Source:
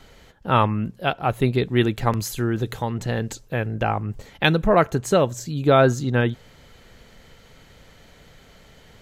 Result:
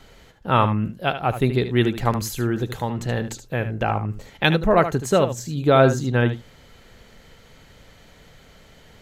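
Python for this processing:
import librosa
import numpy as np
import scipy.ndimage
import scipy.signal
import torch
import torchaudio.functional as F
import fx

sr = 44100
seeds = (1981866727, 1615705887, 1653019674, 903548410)

y = x + 10.0 ** (-11.0 / 20.0) * np.pad(x, (int(75 * sr / 1000.0), 0))[:len(x)]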